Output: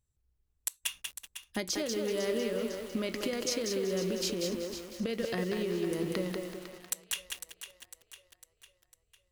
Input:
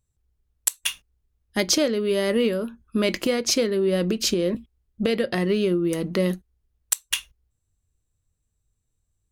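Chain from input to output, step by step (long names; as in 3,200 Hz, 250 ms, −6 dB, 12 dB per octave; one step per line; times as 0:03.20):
downward compressor 8 to 1, threshold −25 dBFS, peak gain reduction 10.5 dB
on a send: echo with a time of its own for lows and highs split 590 Hz, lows 187 ms, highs 502 ms, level −10.5 dB
on the sum: feedback echo at a low word length 190 ms, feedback 35%, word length 7 bits, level −3.5 dB
level −5.5 dB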